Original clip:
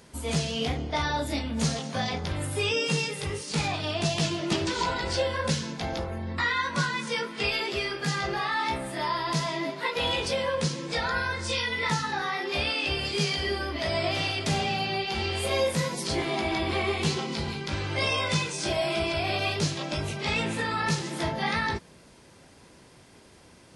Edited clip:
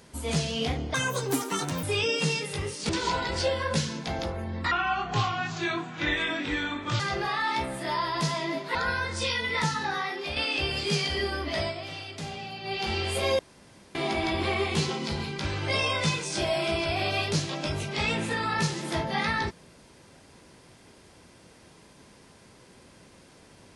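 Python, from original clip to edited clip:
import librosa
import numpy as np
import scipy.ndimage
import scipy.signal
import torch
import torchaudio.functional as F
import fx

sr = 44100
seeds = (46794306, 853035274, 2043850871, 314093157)

y = fx.edit(x, sr, fx.speed_span(start_s=0.94, length_s=1.57, speed=1.76),
    fx.cut(start_s=3.57, length_s=1.06),
    fx.speed_span(start_s=6.45, length_s=1.67, speed=0.73),
    fx.cut(start_s=9.87, length_s=1.16),
    fx.fade_out_to(start_s=12.25, length_s=0.39, floor_db=-7.0),
    fx.fade_down_up(start_s=13.89, length_s=1.16, db=-10.0, fade_s=0.14),
    fx.room_tone_fill(start_s=15.67, length_s=0.56), tone=tone)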